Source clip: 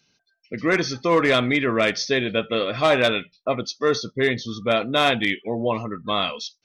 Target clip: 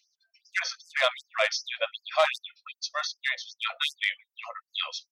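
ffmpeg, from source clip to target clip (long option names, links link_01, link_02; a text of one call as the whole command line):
ffmpeg -i in.wav -af "atempo=1.3,afftfilt=real='re*gte(b*sr/1024,500*pow(4900/500,0.5+0.5*sin(2*PI*2.6*pts/sr)))':imag='im*gte(b*sr/1024,500*pow(4900/500,0.5+0.5*sin(2*PI*2.6*pts/sr)))':win_size=1024:overlap=0.75,volume=-2.5dB" out.wav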